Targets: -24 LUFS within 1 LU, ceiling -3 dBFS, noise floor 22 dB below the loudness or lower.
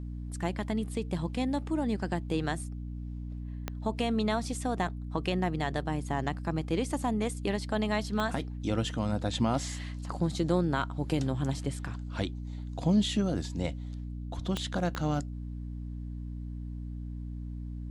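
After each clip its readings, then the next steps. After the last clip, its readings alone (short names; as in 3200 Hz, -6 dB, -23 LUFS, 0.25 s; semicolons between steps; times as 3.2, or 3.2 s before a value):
clicks 4; hum 60 Hz; harmonics up to 300 Hz; hum level -36 dBFS; loudness -32.5 LUFS; peak -15.5 dBFS; loudness target -24.0 LUFS
-> de-click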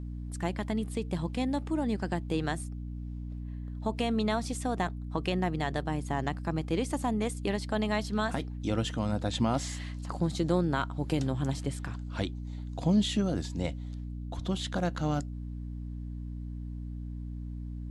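clicks 0; hum 60 Hz; harmonics up to 300 Hz; hum level -36 dBFS
-> de-hum 60 Hz, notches 5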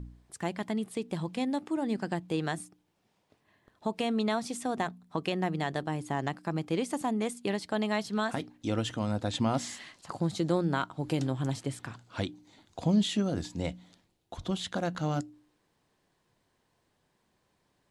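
hum none; loudness -32.5 LUFS; peak -15.5 dBFS; loudness target -24.0 LUFS
-> gain +8.5 dB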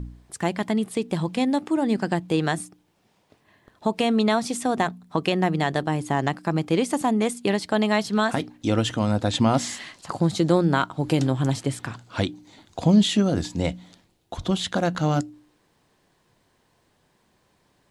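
loudness -24.0 LUFS; peak -7.0 dBFS; noise floor -66 dBFS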